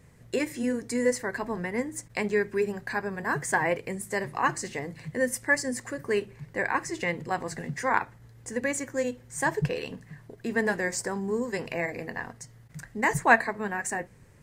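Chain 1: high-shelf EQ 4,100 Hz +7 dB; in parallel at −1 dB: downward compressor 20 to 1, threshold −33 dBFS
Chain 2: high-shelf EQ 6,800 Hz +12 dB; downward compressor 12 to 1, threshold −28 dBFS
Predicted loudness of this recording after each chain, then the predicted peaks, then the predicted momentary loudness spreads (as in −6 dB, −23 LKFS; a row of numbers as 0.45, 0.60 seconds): −26.0, −33.5 LKFS; −3.0, −14.5 dBFS; 9, 6 LU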